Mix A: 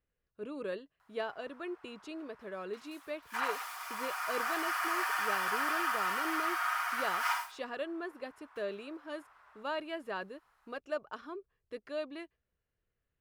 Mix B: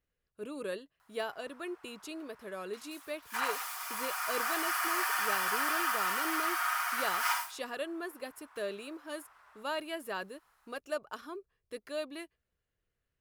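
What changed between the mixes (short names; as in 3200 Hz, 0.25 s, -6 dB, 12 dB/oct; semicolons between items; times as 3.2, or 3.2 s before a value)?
speech: remove air absorption 53 m; master: add high shelf 5000 Hz +9.5 dB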